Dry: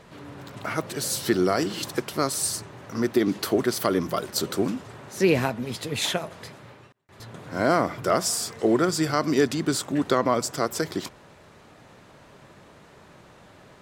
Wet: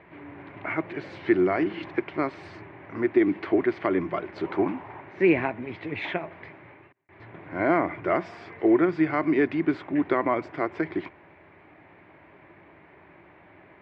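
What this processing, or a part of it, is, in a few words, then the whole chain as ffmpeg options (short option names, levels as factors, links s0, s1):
bass cabinet: -filter_complex "[0:a]highpass=81,equalizer=f=130:t=q:w=4:g=-9,equalizer=f=220:t=q:w=4:g=-10,equalizer=f=330:t=q:w=4:g=6,equalizer=f=490:t=q:w=4:g=-8,equalizer=f=1300:t=q:w=4:g=-6,equalizer=f=2200:t=q:w=4:g=8,lowpass=f=2300:w=0.5412,lowpass=f=2300:w=1.3066,asettb=1/sr,asplit=3[s0][s1][s2];[s0]atrim=end=4.444[s3];[s1]atrim=start=4.44:end=5.01,asetpts=PTS-STARTPTS,afade=t=in:d=0.004:c=qsin,afade=t=out:st=0.566:d=0.004:c=qsin,equalizer=f=890:t=o:w=0.68:g=10.5[s4];[s2]atrim=start=5.006[s5];[s3][s4]acrossfade=d=0.004:c1=hsin:c2=qsin[s6];[s6][s5]acrossfade=d=0.004:c1=qsin:c2=hsin"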